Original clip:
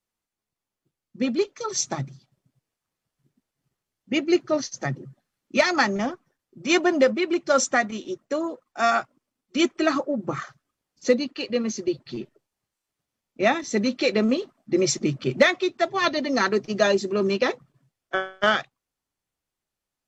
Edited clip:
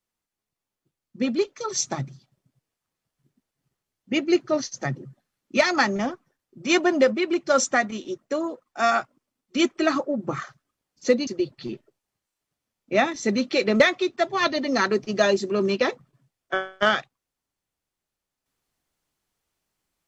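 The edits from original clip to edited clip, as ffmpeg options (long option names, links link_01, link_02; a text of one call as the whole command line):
ffmpeg -i in.wav -filter_complex "[0:a]asplit=3[link_01][link_02][link_03];[link_01]atrim=end=11.272[link_04];[link_02]atrim=start=11.748:end=14.282[link_05];[link_03]atrim=start=15.408[link_06];[link_04][link_05]acrossfade=duration=0.004:curve1=hsin:curve2=hsin[link_07];[link_07][link_06]acrossfade=duration=0.004:curve1=hsin:curve2=hsin" out.wav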